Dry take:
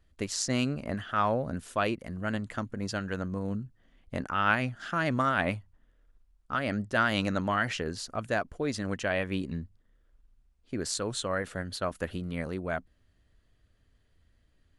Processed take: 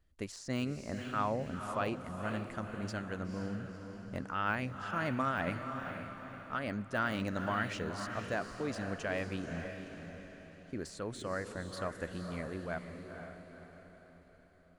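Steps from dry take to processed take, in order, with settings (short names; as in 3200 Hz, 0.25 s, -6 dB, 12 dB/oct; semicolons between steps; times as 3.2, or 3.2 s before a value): de-esser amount 85%; bell 3400 Hz -2 dB; diffused feedback echo 0.495 s, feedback 48%, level -7 dB; gain -6.5 dB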